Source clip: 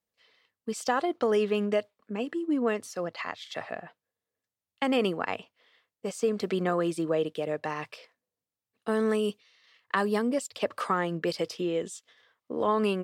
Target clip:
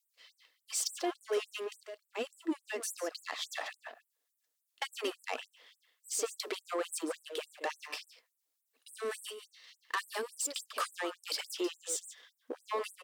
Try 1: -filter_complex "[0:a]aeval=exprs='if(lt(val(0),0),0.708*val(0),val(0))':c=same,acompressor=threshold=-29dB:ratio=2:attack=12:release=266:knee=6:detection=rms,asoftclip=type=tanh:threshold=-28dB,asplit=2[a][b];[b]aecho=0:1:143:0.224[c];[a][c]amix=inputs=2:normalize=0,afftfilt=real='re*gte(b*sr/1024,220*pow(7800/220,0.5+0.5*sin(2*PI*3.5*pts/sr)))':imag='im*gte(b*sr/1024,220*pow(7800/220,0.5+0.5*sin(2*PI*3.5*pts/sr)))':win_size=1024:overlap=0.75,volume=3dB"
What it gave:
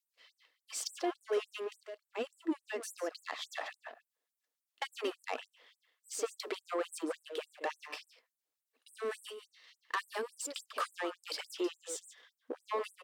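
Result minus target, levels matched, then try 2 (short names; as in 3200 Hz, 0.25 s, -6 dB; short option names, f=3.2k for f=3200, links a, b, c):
8000 Hz band -4.5 dB
-filter_complex "[0:a]aeval=exprs='if(lt(val(0),0),0.708*val(0),val(0))':c=same,acompressor=threshold=-29dB:ratio=2:attack=12:release=266:knee=6:detection=rms,highshelf=f=3.7k:g=9,asoftclip=type=tanh:threshold=-28dB,asplit=2[a][b];[b]aecho=0:1:143:0.224[c];[a][c]amix=inputs=2:normalize=0,afftfilt=real='re*gte(b*sr/1024,220*pow(7800/220,0.5+0.5*sin(2*PI*3.5*pts/sr)))':imag='im*gte(b*sr/1024,220*pow(7800/220,0.5+0.5*sin(2*PI*3.5*pts/sr)))':win_size=1024:overlap=0.75,volume=3dB"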